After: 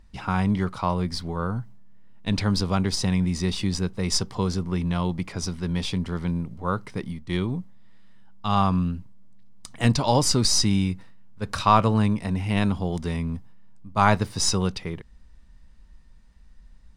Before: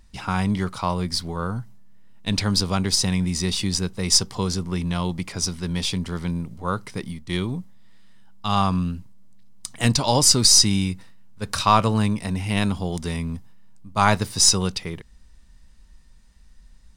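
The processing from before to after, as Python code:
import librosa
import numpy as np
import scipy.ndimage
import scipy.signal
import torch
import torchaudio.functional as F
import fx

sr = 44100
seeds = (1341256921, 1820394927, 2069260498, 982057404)

y = fx.high_shelf(x, sr, hz=3800.0, db=-11.5)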